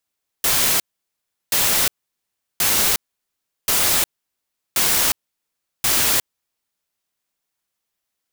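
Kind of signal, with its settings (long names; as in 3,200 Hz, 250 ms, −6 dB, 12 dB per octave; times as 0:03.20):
noise bursts white, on 0.36 s, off 0.72 s, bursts 6, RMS −17.5 dBFS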